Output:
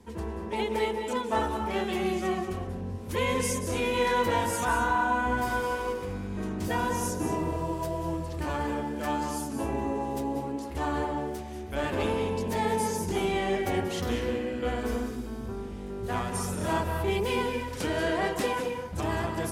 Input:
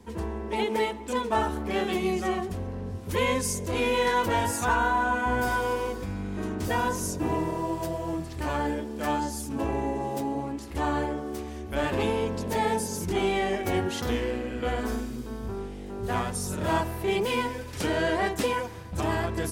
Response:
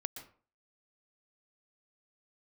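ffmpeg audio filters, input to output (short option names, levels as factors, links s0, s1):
-filter_complex "[0:a]asettb=1/sr,asplit=3[s0][s1][s2];[s0]atrim=end=5.374[s3];[s1]atrim=start=5.37:end=6.1,asetpts=PTS-STARTPTS,afade=t=in:d=0.004:c=qsin,afade=t=out:st=0.726:d=0.004:c=qsin,aeval=exprs='sgn(val(0))*max(abs(val(0))-0.00708,0)':c=same[s4];[s2]atrim=start=6.096[s5];[s3][s4]acrossfade=d=0.004:c1=hsin:c2=qsin[s6];[s6][s5]acrossfade=d=0.004:c1=qsin:c2=hsin[s7];[1:a]atrim=start_sample=2205,asetrate=27783,aresample=44100[s8];[s7][s8]afir=irnorm=-1:irlink=0,volume=0.708"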